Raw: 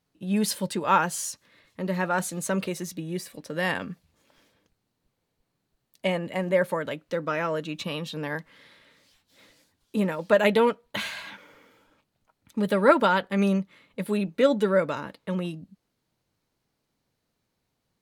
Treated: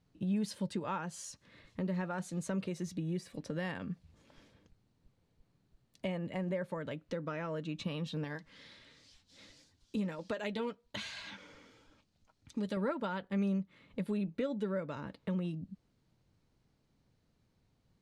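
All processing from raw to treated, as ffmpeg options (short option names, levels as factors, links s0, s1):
-filter_complex "[0:a]asettb=1/sr,asplit=3[s0][s1][s2];[s0]atrim=end=8.244[s3];[s1]atrim=start=8.24:end=12.77,asetpts=PTS-STARTPTS,afade=t=in:d=0.004:c=qsin,afade=t=out:st=4.526:d=0.004:c=qsin,equalizer=f=5600:w=0.69:g=10,flanger=delay=2.5:depth=1.5:regen=-68:speed=1.4:shape=sinusoidal[s4];[s2]atrim=start=12.766[s5];[s3][s4]acrossfade=d=0.004:c1=hsin:c2=qsin[s6];[s6][s5]acrossfade=d=0.004:c1=qsin:c2=hsin,acompressor=threshold=0.00794:ratio=2.5,lowpass=7600,lowshelf=f=250:g=12,volume=0.794"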